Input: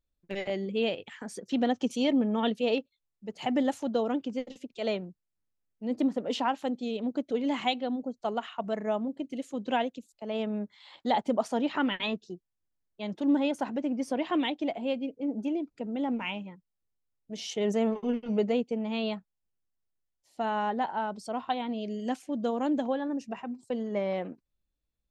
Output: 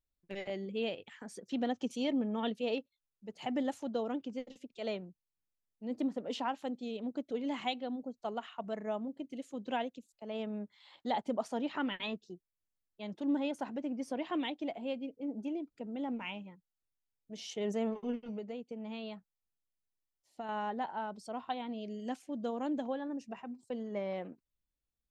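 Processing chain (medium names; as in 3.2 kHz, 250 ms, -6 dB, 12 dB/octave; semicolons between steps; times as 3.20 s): 18.15–20.49 s: compression 6:1, threshold -32 dBFS, peak gain reduction 10 dB; trim -7 dB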